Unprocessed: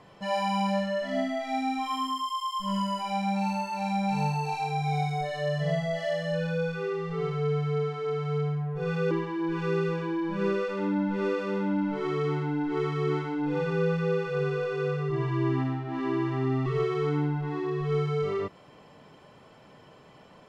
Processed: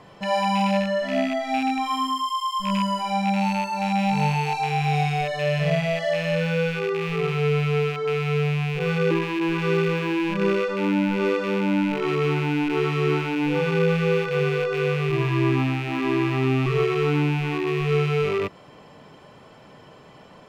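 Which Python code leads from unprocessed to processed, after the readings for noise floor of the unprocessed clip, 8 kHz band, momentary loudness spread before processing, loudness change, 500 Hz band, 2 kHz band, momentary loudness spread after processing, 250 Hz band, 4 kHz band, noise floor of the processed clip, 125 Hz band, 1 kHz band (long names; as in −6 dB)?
−54 dBFS, can't be measured, 3 LU, +6.0 dB, +5.5 dB, +9.0 dB, 3 LU, +5.5 dB, +8.0 dB, −48 dBFS, +5.5 dB, +5.5 dB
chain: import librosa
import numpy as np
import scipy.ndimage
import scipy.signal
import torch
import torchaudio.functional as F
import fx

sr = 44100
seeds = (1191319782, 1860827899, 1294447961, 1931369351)

y = fx.rattle_buzz(x, sr, strikes_db=-38.0, level_db=-27.0)
y = y * 10.0 ** (5.5 / 20.0)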